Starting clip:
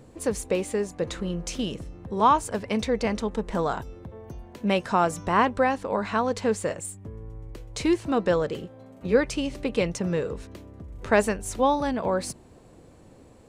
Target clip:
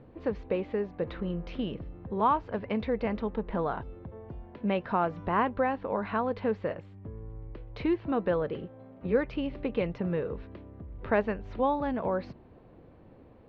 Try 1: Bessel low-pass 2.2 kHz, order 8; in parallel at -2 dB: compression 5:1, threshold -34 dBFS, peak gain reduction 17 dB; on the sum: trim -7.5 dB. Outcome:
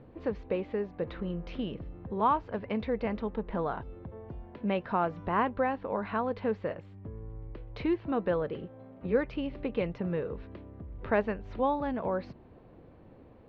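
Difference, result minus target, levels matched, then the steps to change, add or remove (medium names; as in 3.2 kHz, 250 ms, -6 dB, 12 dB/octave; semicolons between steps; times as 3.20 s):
compression: peak gain reduction +6.5 dB
change: compression 5:1, threshold -26 dBFS, peak gain reduction 11 dB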